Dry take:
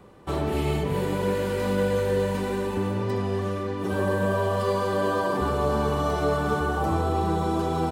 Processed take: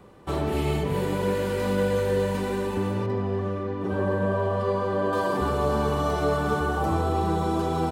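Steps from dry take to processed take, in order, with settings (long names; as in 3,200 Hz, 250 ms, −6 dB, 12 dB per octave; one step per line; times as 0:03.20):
0:03.06–0:05.13: low-pass filter 1,500 Hz 6 dB per octave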